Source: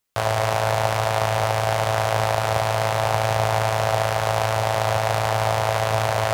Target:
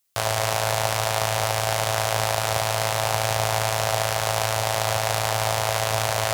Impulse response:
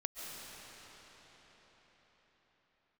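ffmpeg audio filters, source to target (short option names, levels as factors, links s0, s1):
-af "highshelf=f=3100:g=12,volume=0.631"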